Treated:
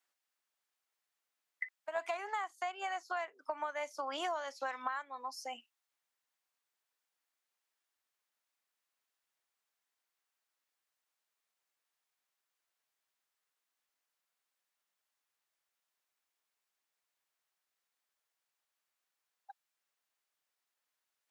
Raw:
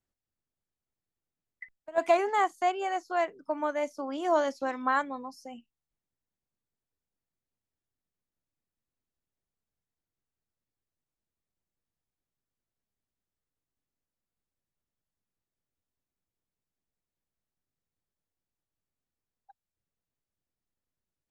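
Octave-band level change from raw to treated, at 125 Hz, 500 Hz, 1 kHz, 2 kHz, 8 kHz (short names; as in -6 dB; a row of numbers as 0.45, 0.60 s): n/a, -12.5 dB, -9.5 dB, -6.0 dB, -4.0 dB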